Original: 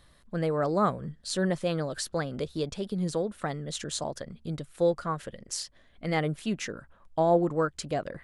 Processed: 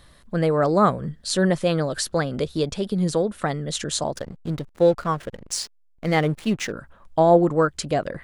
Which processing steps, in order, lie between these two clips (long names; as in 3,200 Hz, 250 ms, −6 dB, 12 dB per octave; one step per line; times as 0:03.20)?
0:04.16–0:06.72: slack as between gear wheels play −40.5 dBFS
level +7.5 dB